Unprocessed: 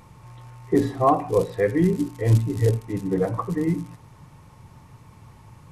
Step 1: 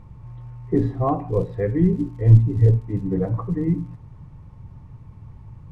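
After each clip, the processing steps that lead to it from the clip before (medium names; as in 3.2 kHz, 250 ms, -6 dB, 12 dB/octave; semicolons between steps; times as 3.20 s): RIAA curve playback; trim -6 dB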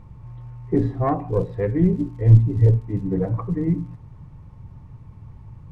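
self-modulated delay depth 0.17 ms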